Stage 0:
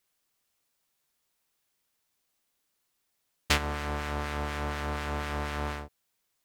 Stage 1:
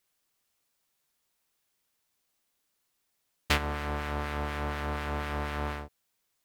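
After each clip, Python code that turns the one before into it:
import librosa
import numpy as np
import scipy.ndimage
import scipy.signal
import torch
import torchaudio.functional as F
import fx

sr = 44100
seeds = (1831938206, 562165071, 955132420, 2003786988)

y = fx.dynamic_eq(x, sr, hz=6800.0, q=0.87, threshold_db=-51.0, ratio=4.0, max_db=-6)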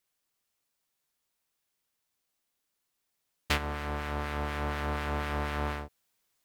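y = fx.rider(x, sr, range_db=10, speed_s=2.0)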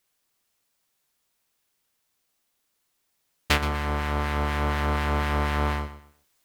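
y = fx.echo_feedback(x, sr, ms=123, feedback_pct=27, wet_db=-13.0)
y = y * librosa.db_to_amplitude(6.5)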